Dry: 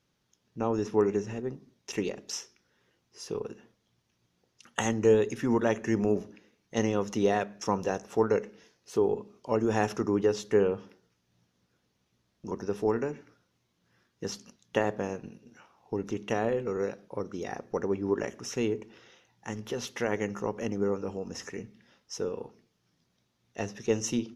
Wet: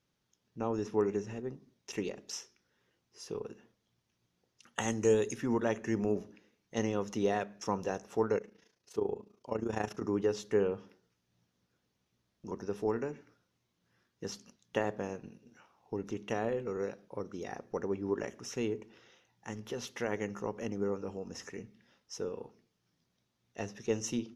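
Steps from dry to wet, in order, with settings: 4.88–5.36 bell 8800 Hz +14.5 dB 1.3 oct; 8.38–10.02 AM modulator 28 Hz, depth 60%; gain -5 dB

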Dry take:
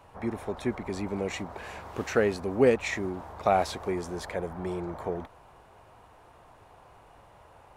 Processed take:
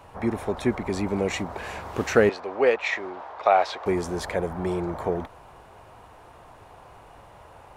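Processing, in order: 2.29–3.86 three-band isolator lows -23 dB, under 440 Hz, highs -23 dB, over 4900 Hz; gain +6 dB

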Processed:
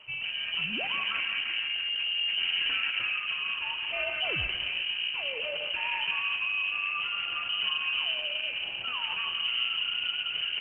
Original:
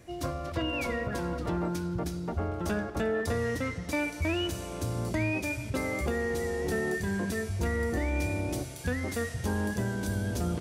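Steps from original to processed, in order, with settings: in parallel at +1 dB: negative-ratio compressor -37 dBFS, ratio -1; on the sum: rotary speaker horn 0.65 Hz; short-mantissa float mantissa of 2-bit; on a send: analogue delay 0.171 s, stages 2048, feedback 67%, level -6 dB; on the sum: inverted band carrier 3000 Hz; gain -4 dB; Opus 12 kbps 48000 Hz

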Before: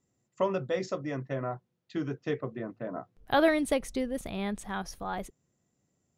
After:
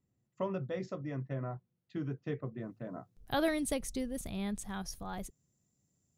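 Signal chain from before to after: tone controls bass +9 dB, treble -6 dB, from 2.57 s treble +11 dB; gain -8.5 dB

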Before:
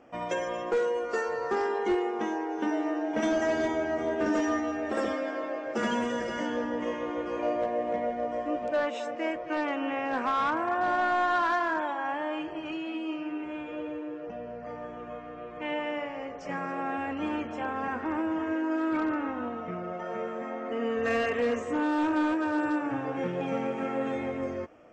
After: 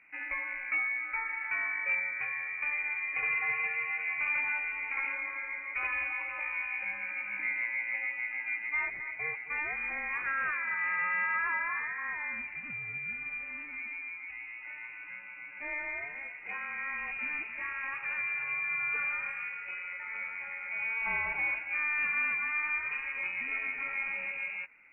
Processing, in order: air absorption 210 m; inverted band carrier 2700 Hz; gain -4 dB

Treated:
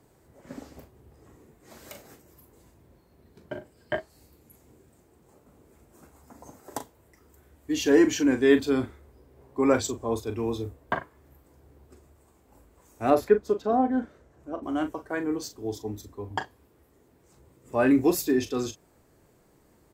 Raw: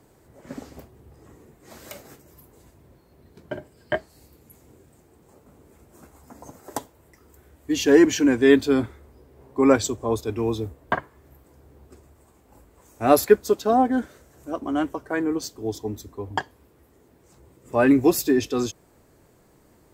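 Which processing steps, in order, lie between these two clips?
13.1–14.63 LPF 1600 Hz 6 dB/oct; doubler 39 ms -10 dB; gain -4.5 dB

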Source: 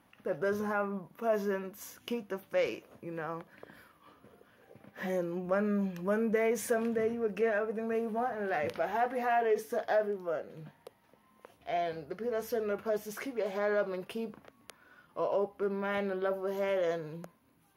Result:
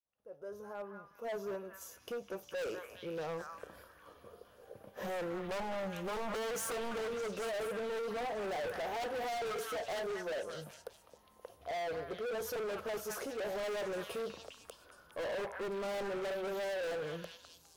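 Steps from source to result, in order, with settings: opening faded in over 3.70 s; low shelf 180 Hz +11 dB; wavefolder -27 dBFS; graphic EQ 125/250/500/2000/8000 Hz -10/-10/+7/-10/+4 dB; delay with a stepping band-pass 0.205 s, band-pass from 1600 Hz, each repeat 0.7 oct, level -1 dB; hard clip -37 dBFS, distortion -6 dB; gain +1 dB

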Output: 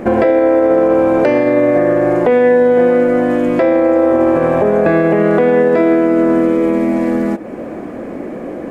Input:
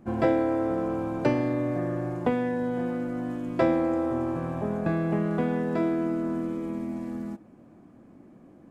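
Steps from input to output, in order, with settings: graphic EQ 125/500/2000 Hz -7/+12/+9 dB; compressor 2:1, threshold -40 dBFS, peak gain reduction 16.5 dB; maximiser +25.5 dB; gain -2.5 dB

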